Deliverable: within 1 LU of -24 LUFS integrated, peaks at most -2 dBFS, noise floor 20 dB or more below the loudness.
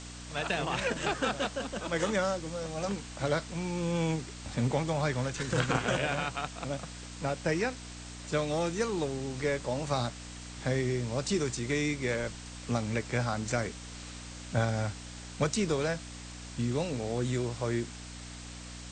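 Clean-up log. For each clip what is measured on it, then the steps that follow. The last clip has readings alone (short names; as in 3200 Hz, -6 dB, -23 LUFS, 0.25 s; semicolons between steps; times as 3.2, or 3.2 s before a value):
hum 60 Hz; harmonics up to 300 Hz; hum level -44 dBFS; noise floor -45 dBFS; noise floor target -52 dBFS; loudness -32.0 LUFS; peak -13.0 dBFS; loudness target -24.0 LUFS
-> de-hum 60 Hz, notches 5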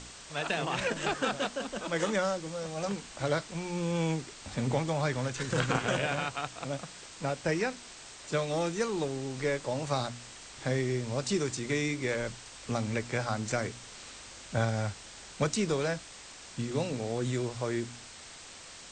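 hum none; noise floor -49 dBFS; noise floor target -53 dBFS
-> noise print and reduce 6 dB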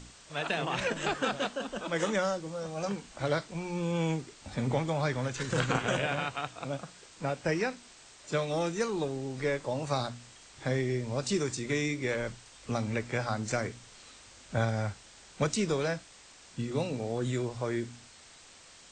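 noise floor -55 dBFS; loudness -32.5 LUFS; peak -13.5 dBFS; loudness target -24.0 LUFS
-> gain +8.5 dB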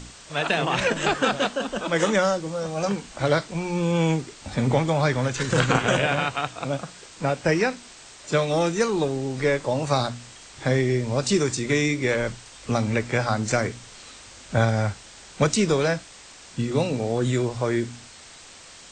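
loudness -24.0 LUFS; peak -5.0 dBFS; noise floor -46 dBFS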